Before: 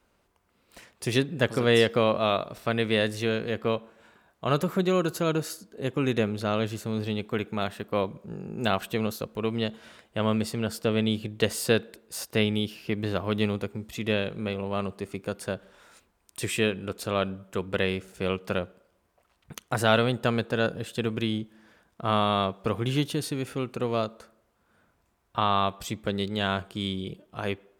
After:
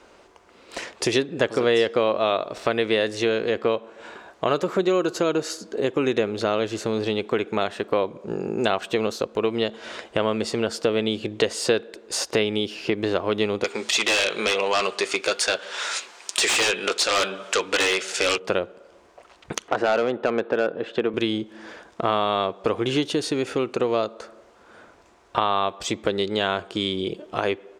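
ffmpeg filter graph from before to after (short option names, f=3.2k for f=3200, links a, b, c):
-filter_complex "[0:a]asettb=1/sr,asplit=3[a][b][c];[a]atrim=end=13.644[d];[b]atrim=start=13.64:end=18.38,asetpts=PTS-STARTPTS,afade=t=in:d=0.004:c=qsin,afade=t=out:st=4.736:d=0.004:c=qsin,bandpass=f=5k:t=q:w=0.51,flanger=delay=3.9:depth=1.9:regen=-63:speed=1:shape=triangular,aeval=exprs='0.1*sin(PI/2*7.94*val(0)/0.1)':c=same[e];[c]atrim=start=18.376[f];[d][e]acrossfade=d=0.004:c1=hsin:c2=qsin[g];[g][f]acrossfade=d=0.004:c1=qsin:c2=hsin,asettb=1/sr,asplit=3[h][i][j];[h]atrim=end=19.684[k];[i]atrim=start=19.68:end=21.14,asetpts=PTS-STARTPTS,afade=t=in:d=0.004:c=qsin,afade=t=out:st=1.456:d=0.004:c=qsin,acompressor=mode=upward:threshold=-44dB:ratio=2.5:attack=3.2:release=140:knee=2.83:detection=peak,highpass=180,lowpass=2.2k,asoftclip=type=hard:threshold=-18dB[l];[j]atrim=start=21.136[m];[k][l]acrossfade=d=0.004:c1=hsin:c2=qsin[n];[n][m]acrossfade=d=0.004:c1=qsin:c2=hsin,firequalizer=gain_entry='entry(160,0);entry(340,13);entry(1300,10);entry(6700,10);entry(13000,-10)':delay=0.05:min_phase=1,acompressor=threshold=-33dB:ratio=2.5,volume=7dB"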